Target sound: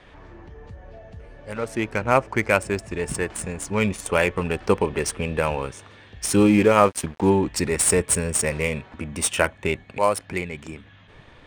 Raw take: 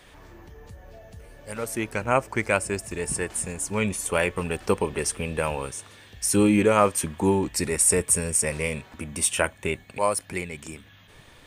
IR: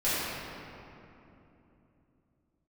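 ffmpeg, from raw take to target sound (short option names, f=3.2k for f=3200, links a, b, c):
-filter_complex "[0:a]adynamicsmooth=sensitivity=4:basefreq=3.4k,asettb=1/sr,asplit=3[a][b][c];[a]atrim=end=6.364[d];[b]atrim=start=6.36:end=7.3,asetpts=PTS-STARTPTS,afade=t=in:d=0.004:c=qsin,afade=t=out:st=0.936:d=0.004:c=qsin,aeval=exprs='sgn(val(0))*max(abs(val(0))-0.00891,0)':c=same[e];[c]atrim=start=7.296[f];[d][e]acrossfade=d=0.004:c1=hsin:c2=qsin[g];[g][f]acrossfade=d=0.004:c1=qsin:c2=hsin,volume=3.5dB"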